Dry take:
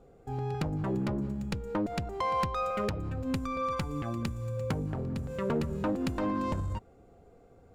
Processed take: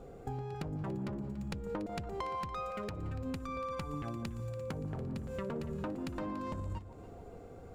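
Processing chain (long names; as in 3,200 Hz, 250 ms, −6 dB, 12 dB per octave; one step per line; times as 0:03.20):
downward compressor 8 to 1, threshold −44 dBFS, peak gain reduction 17.5 dB
on a send: delay that swaps between a low-pass and a high-pass 143 ms, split 980 Hz, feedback 63%, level −10.5 dB
on the sum: level +7 dB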